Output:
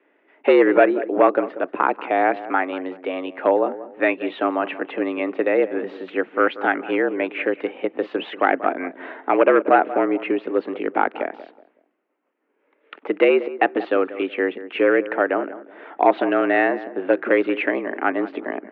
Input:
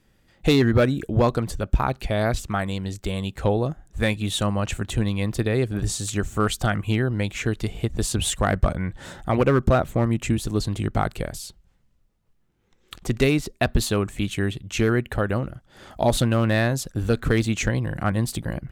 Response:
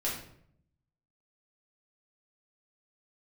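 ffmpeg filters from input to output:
-filter_complex "[0:a]asoftclip=type=hard:threshold=-12.5dB,asplit=2[link_01][link_02];[link_02]adelay=186,lowpass=frequency=1200:poles=1,volume=-14dB,asplit=2[link_03][link_04];[link_04]adelay=186,lowpass=frequency=1200:poles=1,volume=0.32,asplit=2[link_05][link_06];[link_06]adelay=186,lowpass=frequency=1200:poles=1,volume=0.32[link_07];[link_03][link_05][link_07]amix=inputs=3:normalize=0[link_08];[link_01][link_08]amix=inputs=2:normalize=0,highpass=frequency=230:width_type=q:width=0.5412,highpass=frequency=230:width_type=q:width=1.307,lowpass=frequency=2500:width_type=q:width=0.5176,lowpass=frequency=2500:width_type=q:width=0.7071,lowpass=frequency=2500:width_type=q:width=1.932,afreqshift=82,volume=6dB"

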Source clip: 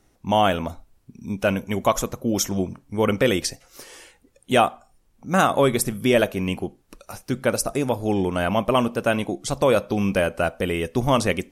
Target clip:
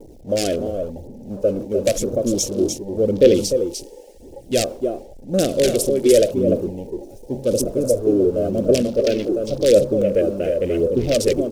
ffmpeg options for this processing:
ffmpeg -i in.wav -af "aeval=exprs='val(0)+0.5*0.106*sgn(val(0))':channel_layout=same,agate=range=-33dB:threshold=-18dB:ratio=3:detection=peak,aecho=1:1:299:0.531,aeval=exprs='(mod(2.24*val(0)+1,2)-1)/2.24':channel_layout=same,aphaser=in_gain=1:out_gain=1:delay=3.1:decay=0.42:speed=0.92:type=triangular,acrusher=bits=6:mix=0:aa=0.000001,firequalizer=gain_entry='entry(170,0);entry(330,8);entry(550,11);entry(900,-28);entry(1600,-9);entry(2400,-3);entry(5500,6)':delay=0.05:min_phase=1,acompressor=mode=upward:threshold=-33dB:ratio=2.5,highshelf=frequency=8700:gain=-5,afwtdn=0.0355,volume=-6.5dB" out.wav

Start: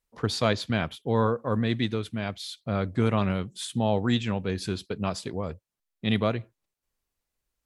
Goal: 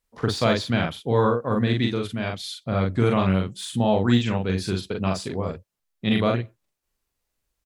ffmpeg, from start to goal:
ffmpeg -i in.wav -filter_complex "[0:a]deesser=0.75,asplit=2[link_01][link_02];[link_02]adelay=42,volume=-3dB[link_03];[link_01][link_03]amix=inputs=2:normalize=0,volume=2.5dB" out.wav

